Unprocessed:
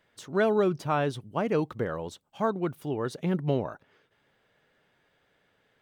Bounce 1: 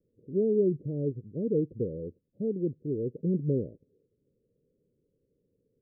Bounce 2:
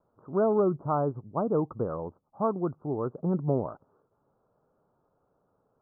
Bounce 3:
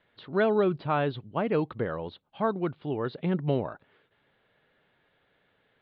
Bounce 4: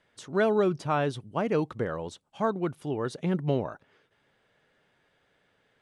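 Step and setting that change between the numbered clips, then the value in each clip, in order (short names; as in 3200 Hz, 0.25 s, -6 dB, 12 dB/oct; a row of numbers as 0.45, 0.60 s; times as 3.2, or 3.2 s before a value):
steep low-pass, frequency: 510, 1300, 4300, 11000 Hz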